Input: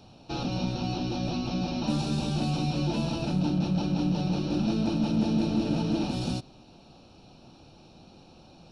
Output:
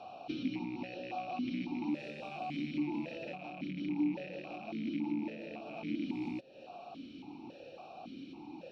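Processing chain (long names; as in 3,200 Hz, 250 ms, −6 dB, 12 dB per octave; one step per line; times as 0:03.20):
loose part that buzzes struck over −29 dBFS, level −27 dBFS
downward compressor 6 to 1, threshold −41 dBFS, peak gain reduction 18 dB
formant filter that steps through the vowels 3.6 Hz
level +15.5 dB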